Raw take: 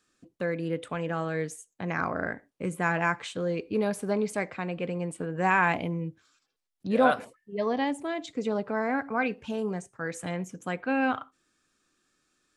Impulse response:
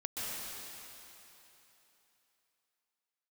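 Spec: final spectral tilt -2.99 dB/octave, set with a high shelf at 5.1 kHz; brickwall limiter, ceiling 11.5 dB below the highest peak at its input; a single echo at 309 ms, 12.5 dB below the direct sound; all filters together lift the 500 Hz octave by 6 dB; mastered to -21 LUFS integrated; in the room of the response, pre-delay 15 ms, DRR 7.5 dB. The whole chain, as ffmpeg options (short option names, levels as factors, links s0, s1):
-filter_complex "[0:a]equalizer=f=500:t=o:g=7,highshelf=f=5100:g=-5.5,alimiter=limit=0.15:level=0:latency=1,aecho=1:1:309:0.237,asplit=2[s0][s1];[1:a]atrim=start_sample=2205,adelay=15[s2];[s1][s2]afir=irnorm=-1:irlink=0,volume=0.266[s3];[s0][s3]amix=inputs=2:normalize=0,volume=2.24"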